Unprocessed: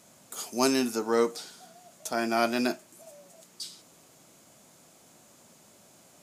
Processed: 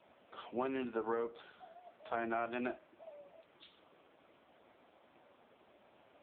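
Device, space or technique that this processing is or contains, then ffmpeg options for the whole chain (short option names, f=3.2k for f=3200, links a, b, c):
voicemail: -af "highpass=310,lowpass=3.1k,acompressor=threshold=-32dB:ratio=12" -ar 8000 -c:a libopencore_amrnb -b:a 5900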